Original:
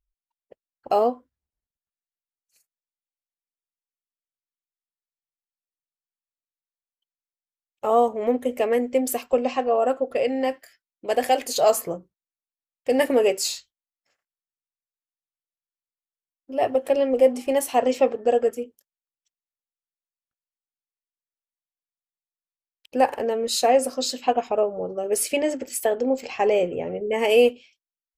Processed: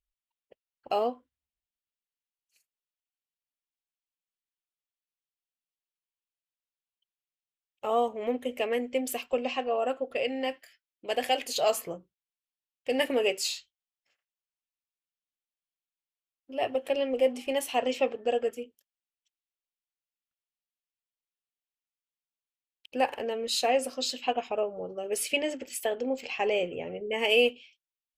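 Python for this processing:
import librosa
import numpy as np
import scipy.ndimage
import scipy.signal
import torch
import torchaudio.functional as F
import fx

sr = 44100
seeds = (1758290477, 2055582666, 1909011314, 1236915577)

y = fx.peak_eq(x, sr, hz=2900.0, db=10.5, octaves=1.0)
y = y * 10.0 ** (-8.0 / 20.0)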